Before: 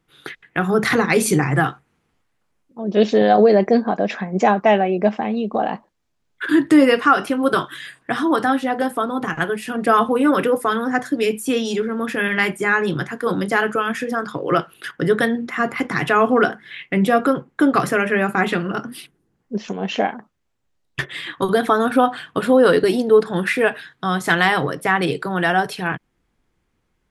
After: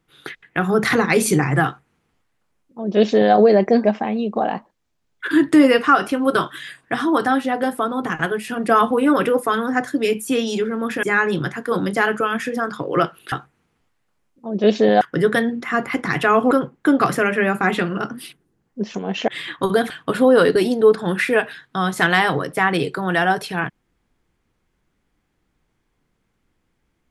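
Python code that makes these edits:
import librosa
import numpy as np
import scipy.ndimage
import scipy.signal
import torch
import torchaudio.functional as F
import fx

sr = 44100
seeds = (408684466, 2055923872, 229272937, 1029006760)

y = fx.edit(x, sr, fx.duplicate(start_s=1.65, length_s=1.69, to_s=14.87),
    fx.cut(start_s=3.84, length_s=1.18),
    fx.cut(start_s=12.21, length_s=0.37),
    fx.cut(start_s=16.37, length_s=0.88),
    fx.cut(start_s=20.02, length_s=1.05),
    fx.cut(start_s=21.69, length_s=0.49), tone=tone)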